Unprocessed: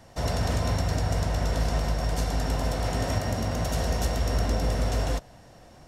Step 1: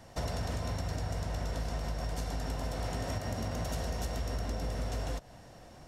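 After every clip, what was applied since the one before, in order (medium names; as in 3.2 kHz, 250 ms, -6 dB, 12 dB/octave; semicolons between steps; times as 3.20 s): compression, threshold -30 dBFS, peak gain reduction 9.5 dB; trim -1.5 dB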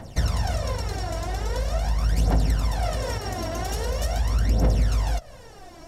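phaser 0.43 Hz, delay 3.1 ms, feedback 71%; trim +5.5 dB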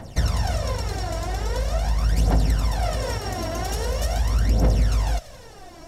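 feedback echo behind a high-pass 86 ms, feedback 69%, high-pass 2.8 kHz, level -12 dB; trim +1.5 dB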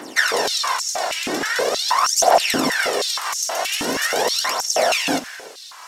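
spectral peaks clipped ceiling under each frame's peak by 23 dB; reverberation, pre-delay 3 ms, DRR 15.5 dB; step-sequenced high-pass 6.3 Hz 280–6200 Hz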